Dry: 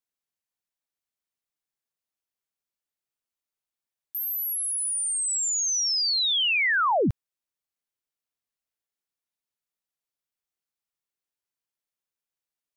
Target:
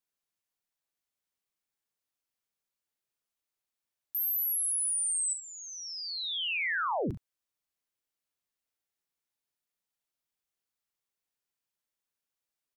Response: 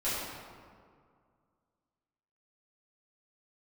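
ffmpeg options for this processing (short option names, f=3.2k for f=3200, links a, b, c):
-filter_complex "[0:a]alimiter=level_in=4dB:limit=-24dB:level=0:latency=1,volume=-4dB,asettb=1/sr,asplit=3[a][b][c];[a]atrim=end=5.334[d];[b]atrim=start=5.33:end=6.89,asetpts=PTS-STARTPTS,afade=t=in:d=0.004:c=qsin,afade=t=out:st=1.556:d=0.004:c=qsin,highpass=600,lowpass=3.2k[e];[c]atrim=start=6.886[f];[d][e]acrossfade=d=0.004:c1=hsin:c2=qsin[g];[g][f]acrossfade=d=0.004:c1=qsin:c2=hsin,aecho=1:1:39|67:0.316|0.282"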